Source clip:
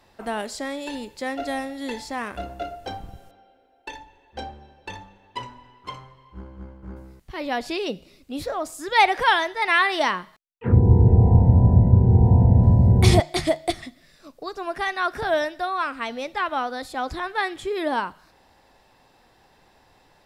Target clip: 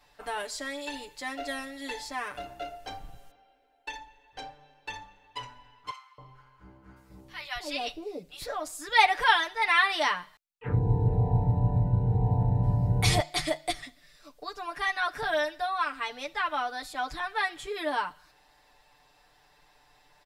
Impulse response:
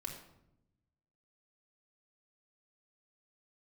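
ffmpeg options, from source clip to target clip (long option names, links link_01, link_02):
-filter_complex "[0:a]equalizer=frequency=220:width=0.42:gain=-10,aecho=1:1:6.8:0.98,asettb=1/sr,asplit=3[link_01][link_02][link_03];[link_01]atrim=end=5.914[link_04];[link_02]atrim=start=5.91:end=8.42,asetpts=PTS-STARTPTS,afade=type=in:duration=0.004:curve=qsin,afade=type=out:start_time=2.506:duration=0.004:curve=qsin,acrossover=split=890[link_05][link_06];[link_05]adelay=270[link_07];[link_07][link_06]amix=inputs=2:normalize=0,atrim=end_sample=110691[link_08];[link_03]atrim=start=8.416[link_09];[link_04][link_08]acrossfade=duration=0.004:curve1=hsin:curve2=qsin[link_10];[link_10][link_09]acrossfade=duration=0.004:curve1=qsin:curve2=hsin,volume=-4.5dB"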